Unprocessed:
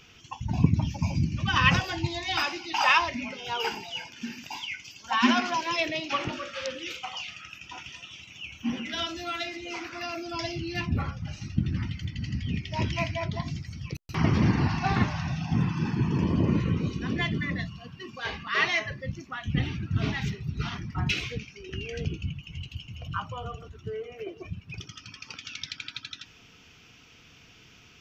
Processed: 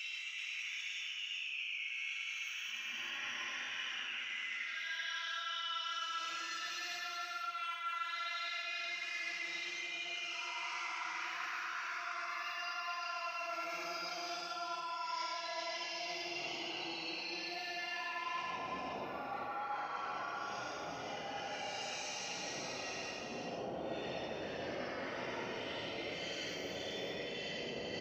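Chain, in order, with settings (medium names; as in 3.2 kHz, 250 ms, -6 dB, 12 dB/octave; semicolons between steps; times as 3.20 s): octave divider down 1 oct, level +3 dB; LFO high-pass saw down 0.15 Hz 370–3100 Hz; Paulstretch 7×, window 0.10 s, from 8.23 s; hum notches 50/100/150 Hz; reverse; compression 10:1, threshold -46 dBFS, peak gain reduction 25 dB; reverse; delay 385 ms -4.5 dB; on a send at -12 dB: reverberation RT60 1.4 s, pre-delay 42 ms; on the sum: trim +6 dB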